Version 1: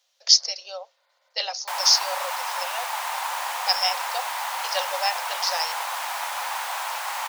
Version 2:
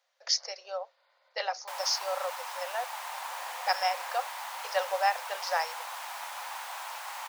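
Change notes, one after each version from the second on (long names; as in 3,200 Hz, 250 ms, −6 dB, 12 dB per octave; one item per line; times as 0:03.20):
speech: add high shelf with overshoot 2,400 Hz −10.5 dB, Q 1.5
second sound −10.0 dB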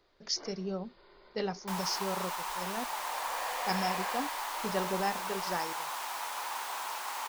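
speech −8.0 dB
first sound +6.0 dB
master: remove Chebyshev high-pass with heavy ripple 510 Hz, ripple 3 dB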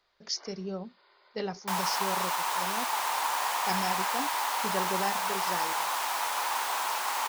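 first sound: add high-pass filter 770 Hz 12 dB per octave
second sound +7.0 dB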